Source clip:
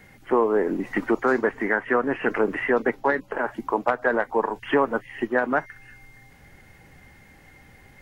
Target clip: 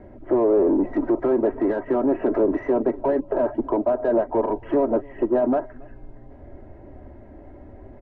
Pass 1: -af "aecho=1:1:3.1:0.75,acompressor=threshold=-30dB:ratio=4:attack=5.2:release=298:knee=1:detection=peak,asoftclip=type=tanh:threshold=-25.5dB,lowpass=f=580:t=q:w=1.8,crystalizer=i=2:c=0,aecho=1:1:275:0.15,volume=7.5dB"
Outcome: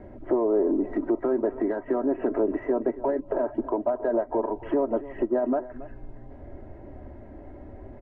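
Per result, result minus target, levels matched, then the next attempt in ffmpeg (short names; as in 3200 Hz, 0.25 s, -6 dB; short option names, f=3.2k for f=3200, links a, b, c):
compressor: peak gain reduction +9 dB; echo-to-direct +9 dB
-af "aecho=1:1:3.1:0.75,acompressor=threshold=-18dB:ratio=4:attack=5.2:release=298:knee=1:detection=peak,asoftclip=type=tanh:threshold=-25.5dB,lowpass=f=580:t=q:w=1.8,crystalizer=i=2:c=0,aecho=1:1:275:0.15,volume=7.5dB"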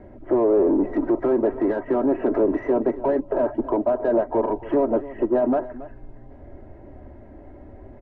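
echo-to-direct +9 dB
-af "aecho=1:1:3.1:0.75,acompressor=threshold=-18dB:ratio=4:attack=5.2:release=298:knee=1:detection=peak,asoftclip=type=tanh:threshold=-25.5dB,lowpass=f=580:t=q:w=1.8,crystalizer=i=2:c=0,aecho=1:1:275:0.0531,volume=7.5dB"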